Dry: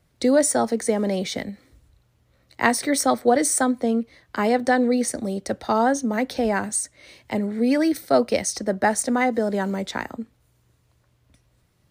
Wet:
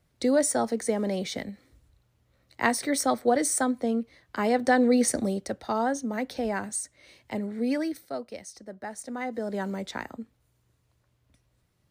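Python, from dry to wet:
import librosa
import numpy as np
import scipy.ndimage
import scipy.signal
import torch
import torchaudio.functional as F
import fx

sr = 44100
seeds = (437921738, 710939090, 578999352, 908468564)

y = fx.gain(x, sr, db=fx.line((4.39, -5.0), (5.19, 1.5), (5.55, -7.0), (7.74, -7.0), (8.23, -18.0), (8.86, -18.0), (9.6, -6.5)))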